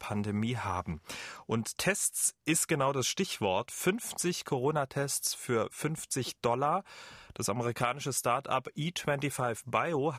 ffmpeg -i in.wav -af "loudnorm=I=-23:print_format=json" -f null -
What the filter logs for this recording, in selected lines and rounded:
"input_i" : "-31.9",
"input_tp" : "-12.9",
"input_lra" : "2.3",
"input_thresh" : "-42.0",